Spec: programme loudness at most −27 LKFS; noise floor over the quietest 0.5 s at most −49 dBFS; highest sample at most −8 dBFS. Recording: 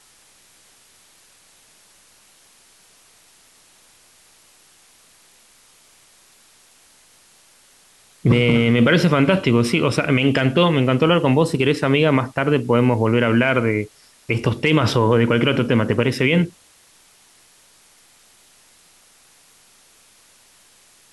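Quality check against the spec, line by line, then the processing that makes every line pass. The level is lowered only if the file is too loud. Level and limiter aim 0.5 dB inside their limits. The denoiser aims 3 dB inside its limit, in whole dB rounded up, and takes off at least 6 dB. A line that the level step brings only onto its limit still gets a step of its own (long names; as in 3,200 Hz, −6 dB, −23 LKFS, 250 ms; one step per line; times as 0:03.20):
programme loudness −17.5 LKFS: out of spec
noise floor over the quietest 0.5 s −53 dBFS: in spec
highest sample −5.5 dBFS: out of spec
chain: level −10 dB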